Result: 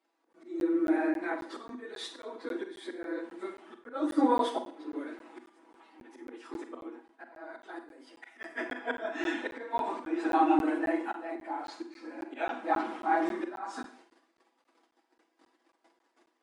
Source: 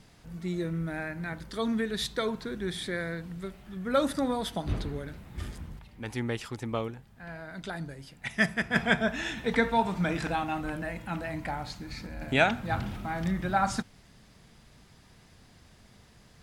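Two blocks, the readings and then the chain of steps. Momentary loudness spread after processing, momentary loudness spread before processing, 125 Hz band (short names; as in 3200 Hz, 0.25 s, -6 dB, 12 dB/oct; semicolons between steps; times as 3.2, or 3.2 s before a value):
20 LU, 15 LU, -24.5 dB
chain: phase scrambler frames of 50 ms; gate -53 dBFS, range -20 dB; bell 6400 Hz -8 dB 2.9 oct; comb 6.1 ms, depth 62%; dynamic EQ 310 Hz, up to +7 dB, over -47 dBFS, Q 4.2; auto swell 0.443 s; rippled Chebyshev high-pass 240 Hz, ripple 6 dB; Schroeder reverb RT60 0.47 s, combs from 32 ms, DRR 7 dB; downsampling 22050 Hz; crackling interface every 0.27 s, samples 512, zero, from 0.33; gain +6 dB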